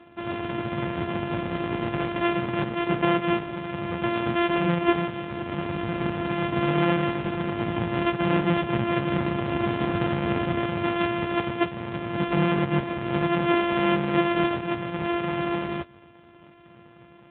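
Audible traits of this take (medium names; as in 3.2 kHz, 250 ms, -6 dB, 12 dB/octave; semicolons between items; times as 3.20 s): a buzz of ramps at a fixed pitch in blocks of 128 samples; AMR-NB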